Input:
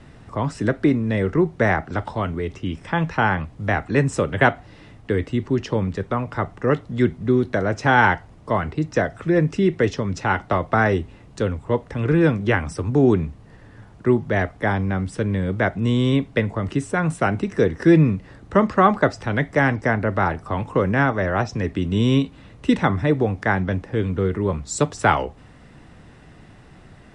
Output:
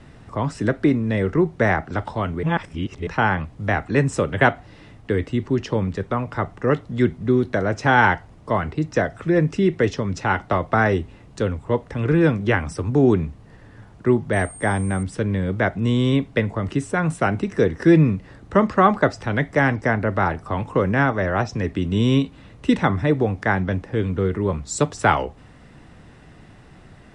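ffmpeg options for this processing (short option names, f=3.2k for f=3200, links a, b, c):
-filter_complex "[0:a]asettb=1/sr,asplit=3[a][b][c];[a]atrim=end=14.334[d];[b]atrim=start=14.33:end=15.03,asetpts=PTS-STARTPTS,afade=t=in:d=0.004:c=qsin,afade=t=out:st=0.696:d=0.004:c=qsin,aeval=exprs='val(0)+0.0126*sin(2*PI*8600*n/s)':c=same[e];[c]atrim=start=15.026[f];[d][e]acrossfade=d=0.004:c1=hsin:c2=qsin[g];[g][f]acrossfade=d=0.004:c1=qsin:c2=hsin,asplit=3[h][i][j];[h]atrim=end=2.432[k];[i]atrim=start=2.428:end=3.072,asetpts=PTS-STARTPTS,areverse[l];[j]atrim=start=3.068[m];[k][l]acrossfade=d=0.004:c1=hsin:c2=hsin[n];[n][m]acrossfade=d=0.004:c1=hsin:c2=hsin"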